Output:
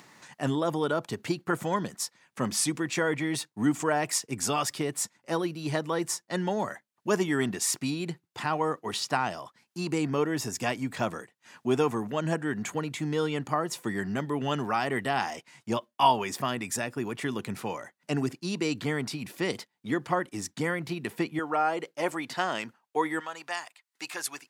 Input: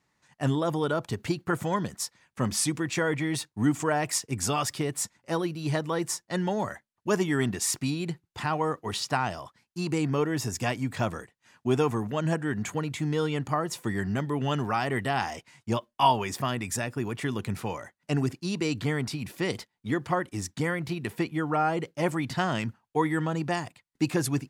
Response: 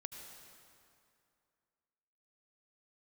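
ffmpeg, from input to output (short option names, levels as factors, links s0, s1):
-af "acompressor=mode=upward:threshold=0.0126:ratio=2.5,asetnsamples=n=441:p=0,asendcmd='21.39 highpass f 370;23.2 highpass f 970',highpass=170"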